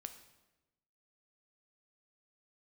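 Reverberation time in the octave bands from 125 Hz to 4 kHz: 1.3, 1.2, 1.1, 1.0, 0.90, 0.85 seconds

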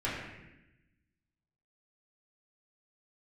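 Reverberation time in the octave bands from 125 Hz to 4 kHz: 1.5, 1.4, 1.0, 0.90, 1.1, 0.90 seconds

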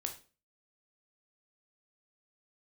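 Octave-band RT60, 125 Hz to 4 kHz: 0.45, 0.45, 0.40, 0.35, 0.30, 0.30 seconds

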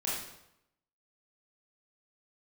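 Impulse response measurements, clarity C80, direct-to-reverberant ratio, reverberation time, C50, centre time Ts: 4.5 dB, −7.0 dB, 0.80 s, 0.0 dB, 63 ms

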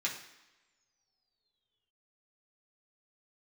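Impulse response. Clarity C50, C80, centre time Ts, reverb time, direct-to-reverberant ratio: 7.5 dB, 10.5 dB, 26 ms, non-exponential decay, −4.0 dB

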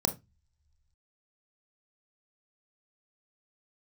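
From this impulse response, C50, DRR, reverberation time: 14.5 dB, 6.5 dB, non-exponential decay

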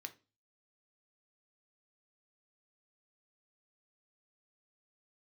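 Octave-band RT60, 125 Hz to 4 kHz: 0.55, 0.40, 0.35, 0.30, 0.30, 0.30 seconds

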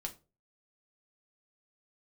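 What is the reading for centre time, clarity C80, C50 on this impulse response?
8 ms, 22.5 dB, 16.0 dB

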